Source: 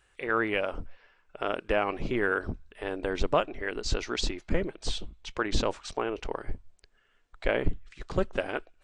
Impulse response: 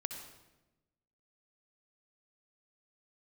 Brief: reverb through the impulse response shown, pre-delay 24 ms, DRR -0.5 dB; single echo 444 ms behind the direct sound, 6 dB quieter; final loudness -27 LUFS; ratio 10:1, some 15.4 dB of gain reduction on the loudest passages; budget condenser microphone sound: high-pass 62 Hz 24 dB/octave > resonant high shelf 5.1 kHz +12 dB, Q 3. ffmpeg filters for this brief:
-filter_complex "[0:a]acompressor=threshold=0.0178:ratio=10,aecho=1:1:444:0.501,asplit=2[s0][s1];[1:a]atrim=start_sample=2205,adelay=24[s2];[s1][s2]afir=irnorm=-1:irlink=0,volume=1.06[s3];[s0][s3]amix=inputs=2:normalize=0,highpass=f=62:w=0.5412,highpass=f=62:w=1.3066,highshelf=f=5100:t=q:w=3:g=12,volume=2.51"

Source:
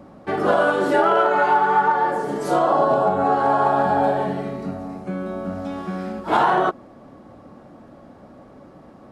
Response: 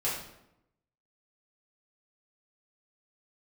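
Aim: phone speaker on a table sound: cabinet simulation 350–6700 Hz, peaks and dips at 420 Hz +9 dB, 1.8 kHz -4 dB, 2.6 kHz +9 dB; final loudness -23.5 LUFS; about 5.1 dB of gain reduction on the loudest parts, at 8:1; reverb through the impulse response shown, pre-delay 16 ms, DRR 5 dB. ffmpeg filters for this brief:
-filter_complex "[0:a]acompressor=threshold=0.126:ratio=8,asplit=2[s0][s1];[1:a]atrim=start_sample=2205,adelay=16[s2];[s1][s2]afir=irnorm=-1:irlink=0,volume=0.237[s3];[s0][s3]amix=inputs=2:normalize=0,highpass=f=350:w=0.5412,highpass=f=350:w=1.3066,equalizer=f=420:t=q:w=4:g=9,equalizer=f=1800:t=q:w=4:g=-4,equalizer=f=2600:t=q:w=4:g=9,lowpass=f=6700:w=0.5412,lowpass=f=6700:w=1.3066,volume=0.708"

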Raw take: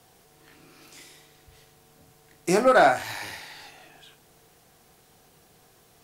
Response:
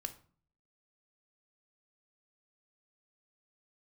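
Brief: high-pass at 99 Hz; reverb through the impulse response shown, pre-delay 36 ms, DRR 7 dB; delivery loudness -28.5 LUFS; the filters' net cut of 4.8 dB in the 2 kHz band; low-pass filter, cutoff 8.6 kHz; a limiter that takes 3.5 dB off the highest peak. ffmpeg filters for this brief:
-filter_complex "[0:a]highpass=99,lowpass=8600,equalizer=f=2000:t=o:g=-7.5,alimiter=limit=0.224:level=0:latency=1,asplit=2[s0][s1];[1:a]atrim=start_sample=2205,adelay=36[s2];[s1][s2]afir=irnorm=-1:irlink=0,volume=0.562[s3];[s0][s3]amix=inputs=2:normalize=0,volume=0.668"

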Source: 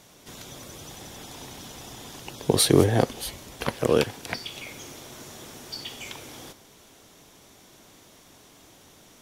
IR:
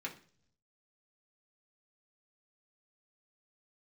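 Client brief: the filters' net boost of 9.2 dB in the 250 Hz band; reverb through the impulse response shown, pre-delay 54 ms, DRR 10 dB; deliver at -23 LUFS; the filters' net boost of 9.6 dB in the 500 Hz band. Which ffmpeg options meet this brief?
-filter_complex "[0:a]equalizer=f=250:t=o:g=9,equalizer=f=500:t=o:g=8.5,asplit=2[s0][s1];[1:a]atrim=start_sample=2205,adelay=54[s2];[s1][s2]afir=irnorm=-1:irlink=0,volume=0.299[s3];[s0][s3]amix=inputs=2:normalize=0,volume=0.447"

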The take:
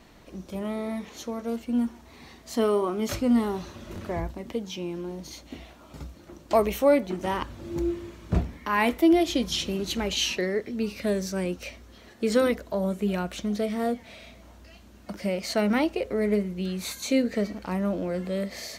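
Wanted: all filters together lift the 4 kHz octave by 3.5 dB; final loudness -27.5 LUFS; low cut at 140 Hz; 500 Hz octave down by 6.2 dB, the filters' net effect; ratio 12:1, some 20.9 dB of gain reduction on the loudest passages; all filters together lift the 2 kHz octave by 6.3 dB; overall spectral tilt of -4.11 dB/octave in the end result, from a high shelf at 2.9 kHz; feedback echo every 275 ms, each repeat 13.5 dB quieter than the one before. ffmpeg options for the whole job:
-af "highpass=140,equalizer=f=500:t=o:g=-8.5,equalizer=f=2000:t=o:g=9,highshelf=f=2900:g=-7.5,equalizer=f=4000:t=o:g=7,acompressor=threshold=0.01:ratio=12,aecho=1:1:275|550:0.211|0.0444,volume=6.31"

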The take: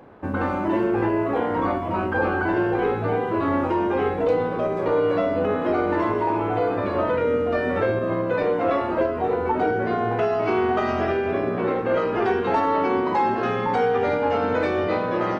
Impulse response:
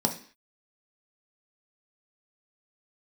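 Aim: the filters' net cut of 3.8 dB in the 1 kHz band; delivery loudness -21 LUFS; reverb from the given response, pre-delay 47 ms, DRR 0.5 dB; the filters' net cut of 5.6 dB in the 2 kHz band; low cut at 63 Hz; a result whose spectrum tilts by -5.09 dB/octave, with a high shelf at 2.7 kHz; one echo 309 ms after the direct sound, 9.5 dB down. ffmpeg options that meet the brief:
-filter_complex "[0:a]highpass=63,equalizer=f=1000:t=o:g=-4,equalizer=f=2000:t=o:g=-8.5,highshelf=f=2700:g=6,aecho=1:1:309:0.335,asplit=2[s0][s1];[1:a]atrim=start_sample=2205,adelay=47[s2];[s1][s2]afir=irnorm=-1:irlink=0,volume=0.335[s3];[s0][s3]amix=inputs=2:normalize=0,volume=0.708"

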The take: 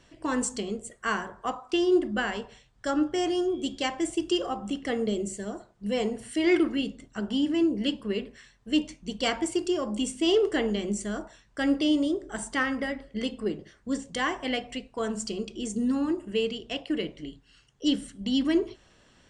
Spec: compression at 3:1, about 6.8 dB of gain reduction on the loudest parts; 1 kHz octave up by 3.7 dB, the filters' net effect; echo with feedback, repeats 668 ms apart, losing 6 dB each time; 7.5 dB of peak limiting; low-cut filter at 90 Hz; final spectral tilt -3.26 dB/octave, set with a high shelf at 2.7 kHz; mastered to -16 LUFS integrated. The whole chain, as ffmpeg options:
-af "highpass=90,equalizer=f=1000:t=o:g=4,highshelf=f=2700:g=6,acompressor=threshold=0.0447:ratio=3,alimiter=limit=0.075:level=0:latency=1,aecho=1:1:668|1336|2004|2672|3340|4008:0.501|0.251|0.125|0.0626|0.0313|0.0157,volume=6.31"

